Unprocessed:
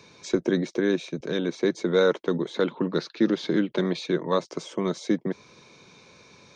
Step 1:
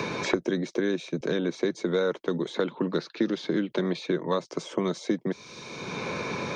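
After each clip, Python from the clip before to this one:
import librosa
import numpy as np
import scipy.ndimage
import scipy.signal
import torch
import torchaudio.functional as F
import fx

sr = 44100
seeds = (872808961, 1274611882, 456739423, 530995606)

y = fx.band_squash(x, sr, depth_pct=100)
y = y * librosa.db_to_amplitude(-3.0)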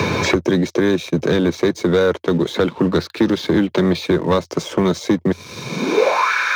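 y = fx.leveller(x, sr, passes=2)
y = fx.filter_sweep_highpass(y, sr, from_hz=85.0, to_hz=1500.0, start_s=5.57, end_s=6.32, q=6.3)
y = y * librosa.db_to_amplitude(4.0)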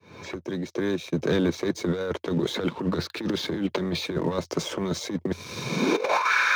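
y = fx.fade_in_head(x, sr, length_s=2.06)
y = fx.over_compress(y, sr, threshold_db=-18.0, ratio=-0.5)
y = y * librosa.db_to_amplitude(-5.5)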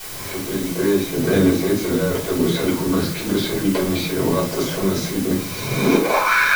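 y = fx.quant_dither(x, sr, seeds[0], bits=6, dither='triangular')
y = fx.room_shoebox(y, sr, seeds[1], volume_m3=230.0, walls='furnished', distance_m=4.9)
y = y * librosa.db_to_amplitude(-4.0)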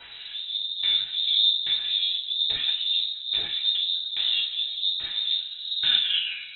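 y = fx.filter_lfo_lowpass(x, sr, shape='saw_down', hz=1.2, low_hz=280.0, high_hz=2900.0, q=0.78)
y = fx.freq_invert(y, sr, carrier_hz=3900)
y = y * librosa.db_to_amplitude(-6.0)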